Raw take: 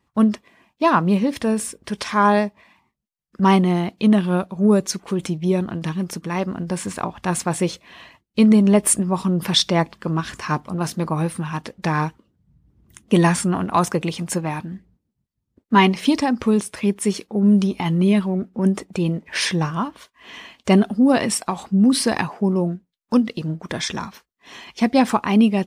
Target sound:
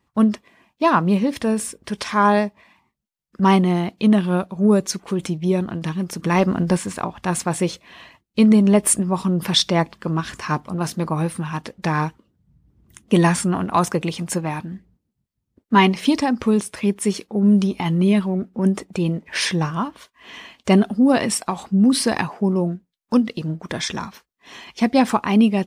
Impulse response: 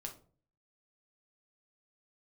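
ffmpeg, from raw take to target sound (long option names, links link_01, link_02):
-filter_complex "[0:a]asettb=1/sr,asplit=3[link_01][link_02][link_03];[link_01]atrim=end=6.194[link_04];[link_02]atrim=start=6.19:end=6.77,asetpts=PTS-STARTPTS,afade=type=in:duration=0.004:curve=qsin,afade=type=out:start_time=0.576:duration=0.004:curve=qsin,acontrast=79[link_05];[link_03]atrim=start=6.766[link_06];[link_04][link_05]acrossfade=duration=0.004:curve1=hsin:curve2=qsin[link_07];[link_07][link_06]acrossfade=duration=0.004:curve1=qsin:curve2=hsin"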